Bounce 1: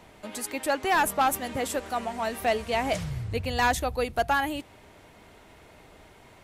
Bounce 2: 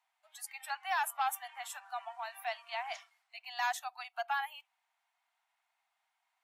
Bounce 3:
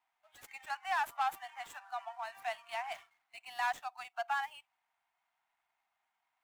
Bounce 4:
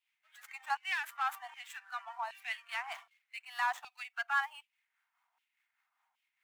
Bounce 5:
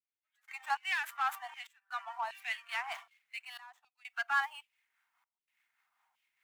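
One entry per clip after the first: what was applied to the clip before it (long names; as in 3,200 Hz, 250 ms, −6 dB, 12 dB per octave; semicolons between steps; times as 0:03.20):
Butterworth high-pass 700 Hz 96 dB per octave; noise reduction from a noise print of the clip's start 17 dB; level −9 dB
running median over 9 samples; parametric band 10,000 Hz −2.5 dB 0.45 octaves
two-band tremolo in antiphase 4.9 Hz, depth 50%, crossover 730 Hz; auto-filter high-pass saw down 1.3 Hz 840–2,900 Hz; level +1.5 dB
gate pattern "..xxxxx.xxxxxxx" 63 BPM −24 dB; in parallel at −9 dB: soft clipping −36.5 dBFS, distortion −6 dB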